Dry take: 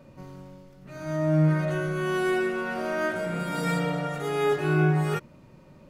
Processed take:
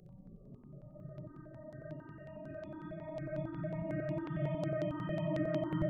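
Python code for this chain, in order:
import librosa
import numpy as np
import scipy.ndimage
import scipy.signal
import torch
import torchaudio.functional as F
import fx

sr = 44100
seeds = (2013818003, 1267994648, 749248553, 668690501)

p1 = scipy.ndimage.median_filter(x, 25, mode='constant')
p2 = fx.spec_topn(p1, sr, count=32)
p3 = fx.paulstretch(p2, sr, seeds[0], factor=14.0, window_s=0.05, from_s=0.83)
p4 = p3 + fx.room_flutter(p3, sr, wall_m=10.9, rt60_s=0.69, dry=0)
p5 = fx.phaser_held(p4, sr, hz=11.0, low_hz=260.0, high_hz=5400.0)
y = F.gain(torch.from_numpy(p5), -6.5).numpy()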